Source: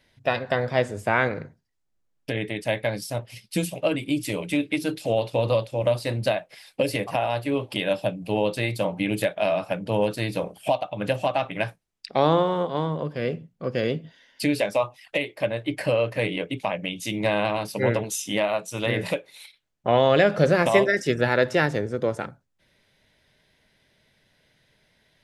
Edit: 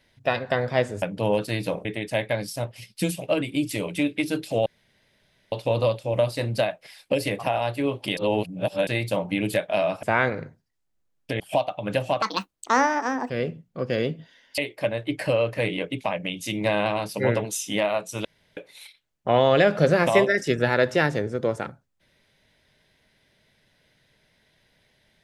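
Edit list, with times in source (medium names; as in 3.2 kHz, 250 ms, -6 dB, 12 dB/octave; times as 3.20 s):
1.02–2.39 s: swap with 9.71–10.54 s
5.20 s: insert room tone 0.86 s
7.85–8.55 s: reverse
11.36–13.15 s: speed 166%
14.43–15.17 s: delete
18.84–19.16 s: room tone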